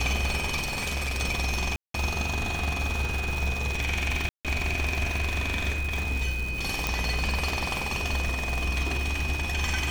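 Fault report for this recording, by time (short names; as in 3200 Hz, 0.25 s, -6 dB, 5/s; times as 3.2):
crackle 450/s -31 dBFS
tone 2500 Hz -32 dBFS
0.62–1.2 clipped -26 dBFS
1.76–1.94 gap 0.183 s
4.29–4.45 gap 0.157 s
6.87 pop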